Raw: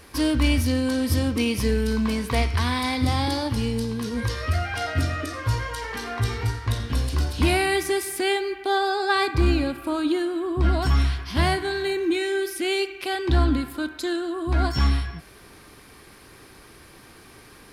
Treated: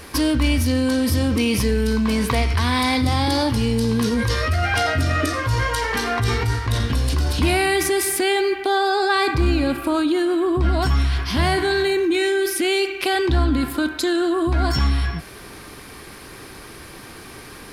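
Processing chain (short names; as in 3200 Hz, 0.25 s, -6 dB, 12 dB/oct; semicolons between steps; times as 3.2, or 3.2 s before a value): in parallel at +1 dB: negative-ratio compressor -28 dBFS, ratio -1; on the sum: notches 50/100 Hz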